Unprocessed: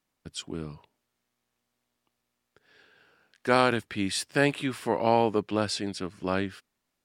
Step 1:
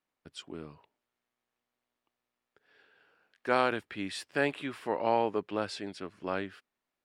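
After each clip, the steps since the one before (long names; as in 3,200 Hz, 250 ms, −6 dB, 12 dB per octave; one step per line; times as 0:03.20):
bass and treble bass −8 dB, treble −9 dB
level −4 dB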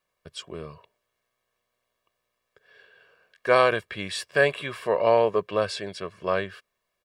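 comb filter 1.8 ms, depth 75%
level +6 dB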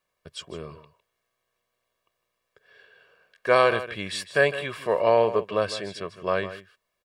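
single-tap delay 156 ms −13.5 dB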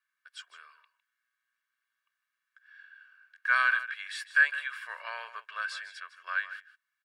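four-pole ladder high-pass 1,400 Hz, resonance 75%
level +2.5 dB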